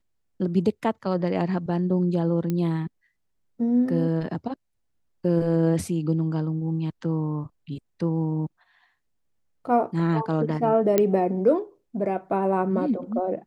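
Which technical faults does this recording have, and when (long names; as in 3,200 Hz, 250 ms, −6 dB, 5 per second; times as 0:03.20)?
0:02.50: click −15 dBFS
0:10.98: click −7 dBFS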